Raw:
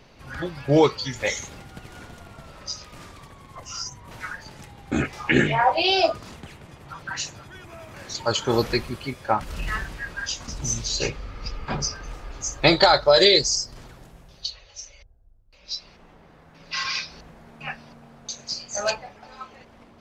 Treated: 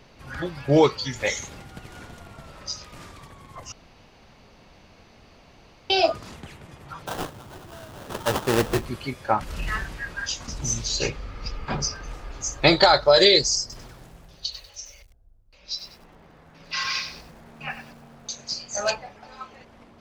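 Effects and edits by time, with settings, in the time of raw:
3.72–5.90 s: room tone
7.06–8.86 s: sample-rate reducer 2.2 kHz, jitter 20%
13.60–18.31 s: bit-crushed delay 96 ms, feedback 35%, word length 8-bit, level -9.5 dB

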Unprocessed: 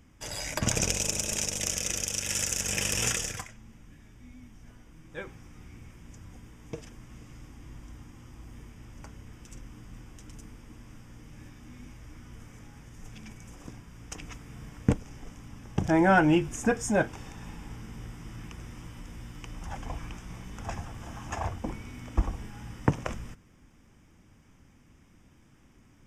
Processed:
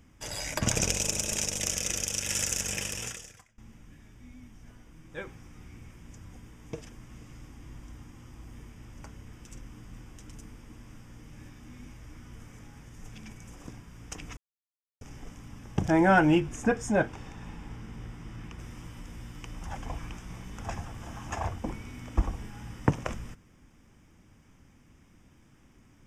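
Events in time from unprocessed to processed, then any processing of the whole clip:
2.56–3.58 s: fade out quadratic, to -19.5 dB
14.37–15.01 s: mute
16.40–18.59 s: treble shelf 6.3 kHz -9.5 dB

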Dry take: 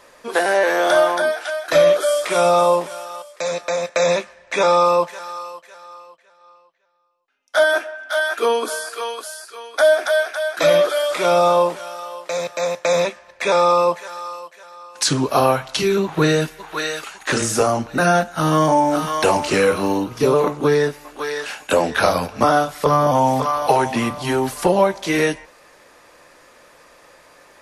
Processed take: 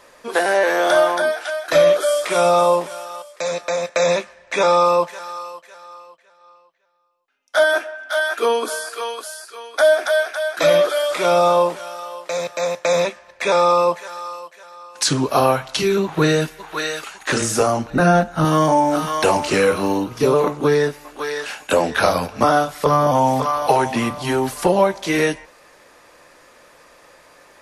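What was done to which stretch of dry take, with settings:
17.90–18.45 s: tilt EQ -2 dB/octave

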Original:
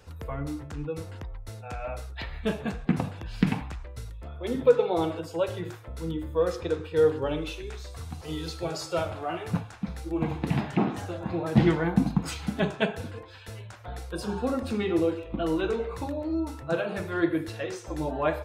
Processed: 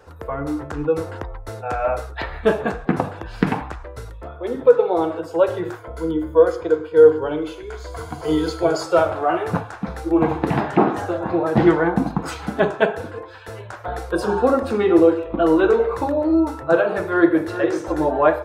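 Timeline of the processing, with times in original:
5.78–8.83 s: rippled EQ curve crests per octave 1.8, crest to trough 9 dB
16.94–17.52 s: echo throw 400 ms, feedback 30%, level -11 dB
whole clip: high-order bell 730 Hz +10 dB 2.8 oct; level rider gain up to 6 dB; trim -1 dB

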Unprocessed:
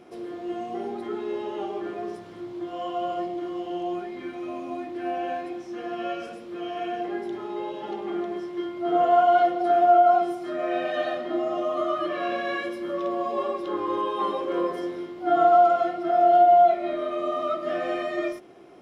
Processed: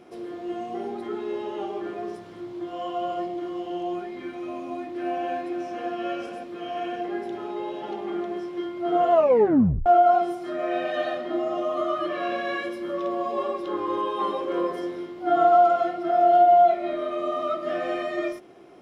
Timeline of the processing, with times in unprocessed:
4.43–5.35 s: echo throw 540 ms, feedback 75%, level -7 dB
9.12 s: tape stop 0.74 s

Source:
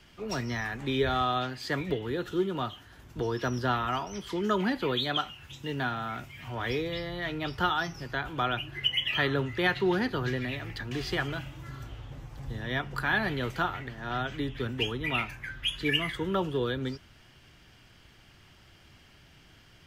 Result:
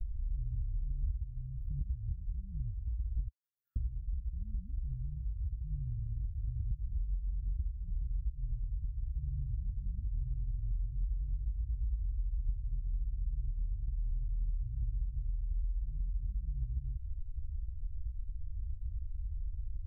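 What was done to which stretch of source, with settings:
3.27–3.76 s: high-pass 1.4 kHz 24 dB/octave
whole clip: inverse Chebyshev band-stop 400–7000 Hz, stop band 80 dB; RIAA curve playback; compression, threshold -51 dBFS; trim +17 dB

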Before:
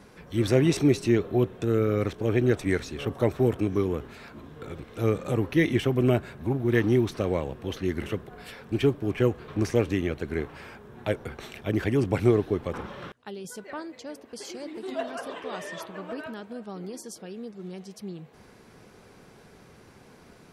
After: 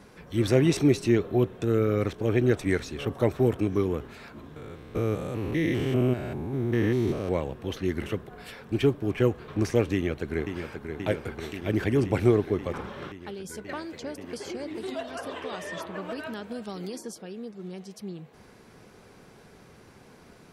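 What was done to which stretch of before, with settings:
4.56–7.29 s: spectrogram pixelated in time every 200 ms
9.93–10.87 s: echo throw 530 ms, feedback 80%, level -7 dB
13.69–17.13 s: three bands compressed up and down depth 100%

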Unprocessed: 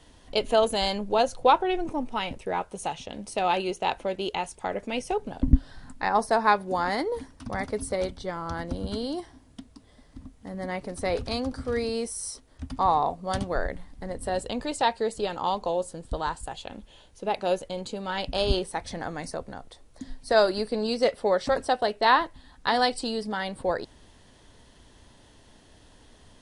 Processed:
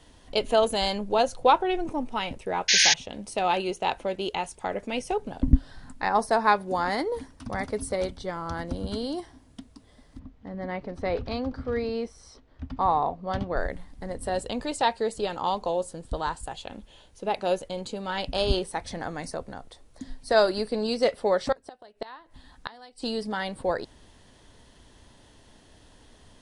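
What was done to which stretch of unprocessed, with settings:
2.68–2.94 s: painted sound noise 1.5–6.8 kHz -19 dBFS
10.19–13.57 s: distance through air 210 m
21.52–23.16 s: inverted gate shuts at -18 dBFS, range -25 dB

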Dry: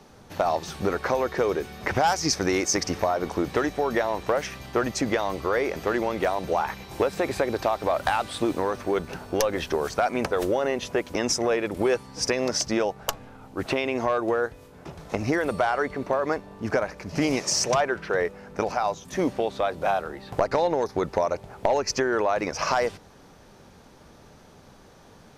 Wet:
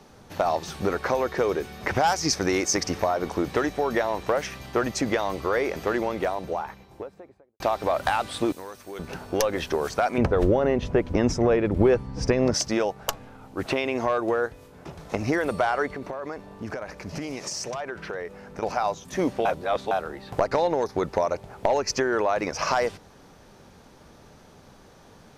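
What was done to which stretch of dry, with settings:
5.79–7.60 s: studio fade out
8.52–8.99 s: pre-emphasis filter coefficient 0.8
10.18–12.54 s: RIAA curve playback
15.86–18.63 s: compression, threshold -29 dBFS
19.45–19.91 s: reverse

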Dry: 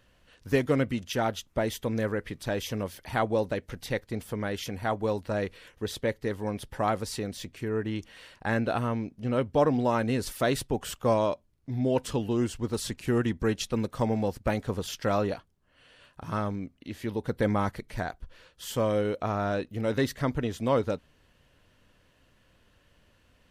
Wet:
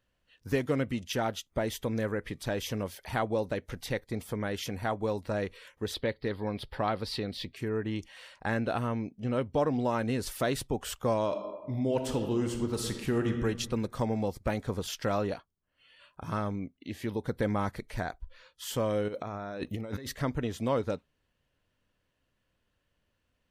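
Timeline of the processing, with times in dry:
5.94–7.56 s: resonant high shelf 5.4 kHz -7 dB, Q 3
11.24–13.43 s: reverb throw, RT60 1.3 s, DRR 5.5 dB
19.08–20.07 s: compressor with a negative ratio -37 dBFS
whole clip: spectral noise reduction 14 dB; compression 1.5:1, threshold -31 dBFS

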